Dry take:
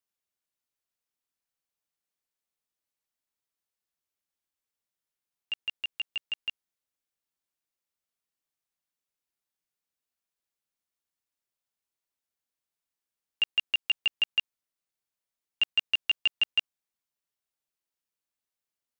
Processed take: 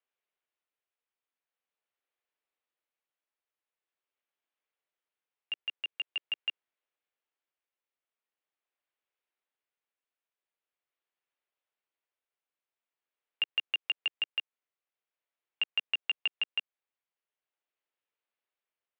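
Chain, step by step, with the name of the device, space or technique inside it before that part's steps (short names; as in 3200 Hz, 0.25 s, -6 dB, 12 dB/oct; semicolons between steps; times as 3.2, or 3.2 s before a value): AM radio (BPF 140–3800 Hz; compressor, threshold -30 dBFS, peak gain reduction 8.5 dB; soft clip -20 dBFS, distortion -25 dB; tremolo 0.44 Hz, depth 33%); Chebyshev band-pass 410–3000 Hz, order 2; gain +4 dB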